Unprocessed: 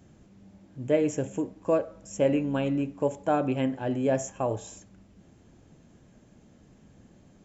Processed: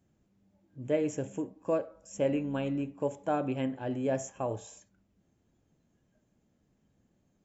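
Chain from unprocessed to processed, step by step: spectral noise reduction 11 dB; gain -5 dB

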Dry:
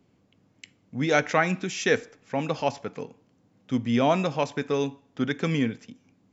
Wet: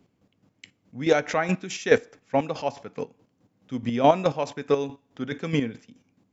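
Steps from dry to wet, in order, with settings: chopper 4.7 Hz, depth 60%, duty 30%; dynamic EQ 590 Hz, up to +5 dB, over -36 dBFS, Q 0.72; gain +2 dB

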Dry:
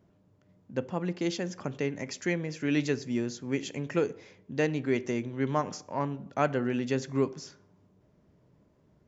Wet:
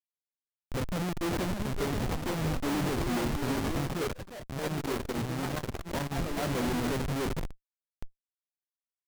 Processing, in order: echo 0.815 s -22.5 dB; sample-rate reducer 2700 Hz, jitter 20%; high shelf 3200 Hz -10.5 dB; Schmitt trigger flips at -39 dBFS; limiter -37 dBFS, peak gain reduction 10 dB; echoes that change speed 0.758 s, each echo +3 st, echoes 2, each echo -6 dB; 3.93–6.15 core saturation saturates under 150 Hz; gain +8.5 dB

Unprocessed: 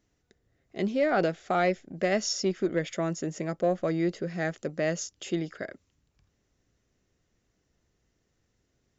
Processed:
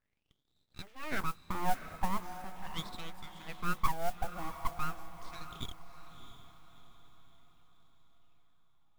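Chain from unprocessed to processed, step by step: crackle 190/s -54 dBFS; wah 0.41 Hz 360–1900 Hz, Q 7.4; modulation noise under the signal 21 dB; full-wave rectifier; on a send: diffused feedback echo 0.661 s, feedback 45%, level -11 dB; on the sum: gain +7 dB

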